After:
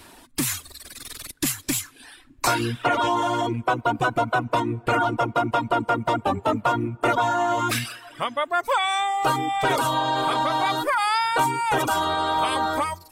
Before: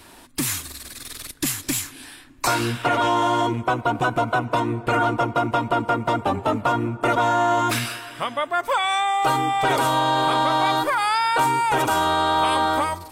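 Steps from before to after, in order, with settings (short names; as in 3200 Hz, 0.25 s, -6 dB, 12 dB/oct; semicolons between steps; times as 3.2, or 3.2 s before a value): reverb removal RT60 0.94 s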